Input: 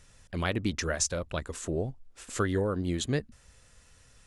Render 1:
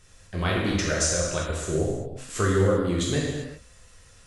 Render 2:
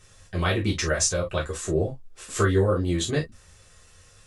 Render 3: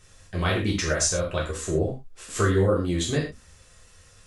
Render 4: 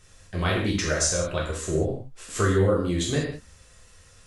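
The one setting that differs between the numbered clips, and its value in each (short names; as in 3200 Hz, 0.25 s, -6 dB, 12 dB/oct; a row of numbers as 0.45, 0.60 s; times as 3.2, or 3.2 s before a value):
non-linear reverb, gate: 420, 80, 150, 220 ms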